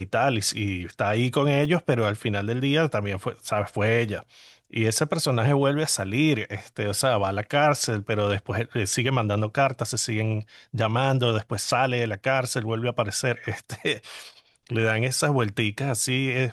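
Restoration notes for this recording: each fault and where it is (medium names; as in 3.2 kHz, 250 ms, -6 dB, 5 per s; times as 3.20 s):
1.65 s: dropout 3.4 ms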